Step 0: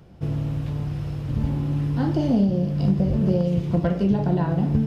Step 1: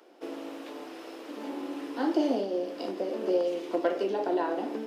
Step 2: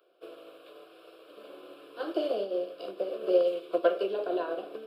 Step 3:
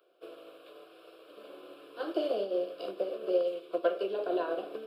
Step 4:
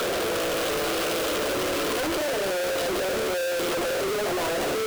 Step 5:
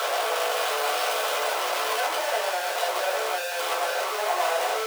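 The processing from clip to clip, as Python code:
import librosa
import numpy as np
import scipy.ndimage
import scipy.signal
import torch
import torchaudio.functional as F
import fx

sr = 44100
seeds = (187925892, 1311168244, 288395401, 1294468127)

y1 = scipy.signal.sosfilt(scipy.signal.butter(8, 290.0, 'highpass', fs=sr, output='sos'), x)
y2 = fx.fixed_phaser(y1, sr, hz=1300.0, stages=8)
y2 = fx.upward_expand(y2, sr, threshold_db=-48.0, expansion=1.5)
y2 = y2 * 10.0 ** (5.0 / 20.0)
y3 = fx.rider(y2, sr, range_db=3, speed_s=0.5)
y3 = y3 * 10.0 ** (-2.0 / 20.0)
y4 = np.sign(y3) * np.sqrt(np.mean(np.square(y3)))
y4 = y4 * 10.0 ** (8.5 / 20.0)
y5 = fx.ladder_highpass(y4, sr, hz=660.0, resonance_pct=45)
y5 = fx.room_shoebox(y5, sr, seeds[0], volume_m3=170.0, walls='furnished', distance_m=1.5)
y5 = y5 * 10.0 ** (6.5 / 20.0)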